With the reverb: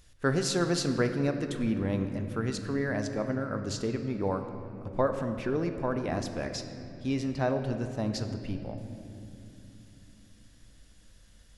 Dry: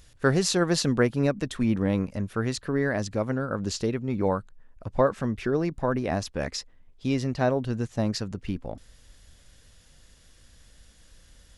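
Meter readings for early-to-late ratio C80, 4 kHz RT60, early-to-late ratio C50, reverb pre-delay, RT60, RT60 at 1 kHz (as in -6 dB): 8.5 dB, 1.9 s, 8.0 dB, 3 ms, 3.0 s, 2.6 s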